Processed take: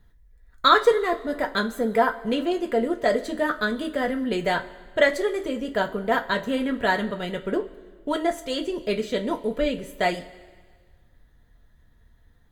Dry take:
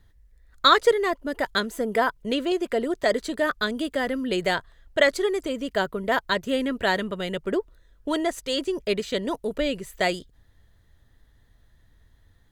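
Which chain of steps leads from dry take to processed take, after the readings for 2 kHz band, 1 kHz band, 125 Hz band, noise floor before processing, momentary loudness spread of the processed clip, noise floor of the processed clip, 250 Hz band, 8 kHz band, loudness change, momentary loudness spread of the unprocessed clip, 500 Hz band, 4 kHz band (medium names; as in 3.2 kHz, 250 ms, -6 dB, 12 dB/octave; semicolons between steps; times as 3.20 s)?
0.0 dB, +1.5 dB, +1.0 dB, -60 dBFS, 8 LU, -57 dBFS, +1.0 dB, -4.0 dB, +0.5 dB, 8 LU, +0.5 dB, -3.0 dB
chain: peaking EQ 6.2 kHz -6 dB 2.7 oct; two-slope reverb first 0.21 s, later 1.6 s, from -19 dB, DRR 3 dB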